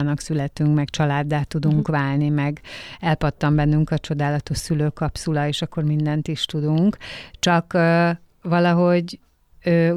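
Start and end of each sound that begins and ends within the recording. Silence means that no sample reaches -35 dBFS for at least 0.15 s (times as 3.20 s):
8.45–9.15 s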